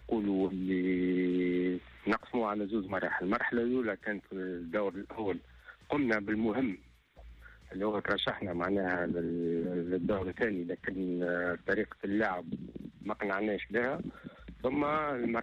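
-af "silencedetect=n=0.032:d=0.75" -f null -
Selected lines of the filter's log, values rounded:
silence_start: 6.71
silence_end: 7.81 | silence_duration: 1.09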